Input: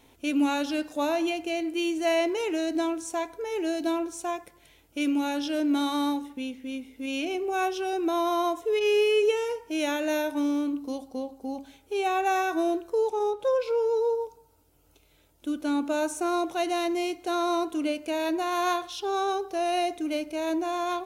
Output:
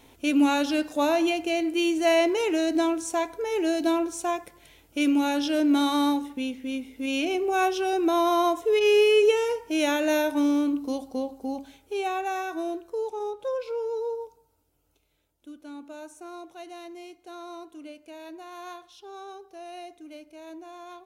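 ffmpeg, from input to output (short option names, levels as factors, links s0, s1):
-af "volume=1.5,afade=t=out:st=11.31:d=0.99:silence=0.375837,afade=t=out:st=14.24:d=1.32:silence=0.334965"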